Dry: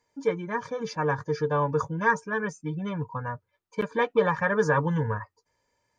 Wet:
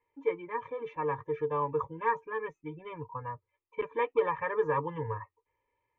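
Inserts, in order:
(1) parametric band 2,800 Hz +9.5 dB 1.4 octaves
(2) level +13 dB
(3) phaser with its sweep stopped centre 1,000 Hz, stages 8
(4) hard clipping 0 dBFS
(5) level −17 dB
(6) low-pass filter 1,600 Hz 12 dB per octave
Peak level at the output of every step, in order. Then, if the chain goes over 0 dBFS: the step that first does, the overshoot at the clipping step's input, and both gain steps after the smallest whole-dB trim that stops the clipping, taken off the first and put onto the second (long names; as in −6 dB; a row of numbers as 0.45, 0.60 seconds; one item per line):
−8.0, +5.0, +3.5, 0.0, −17.0, −17.0 dBFS
step 2, 3.5 dB
step 2 +9 dB, step 5 −13 dB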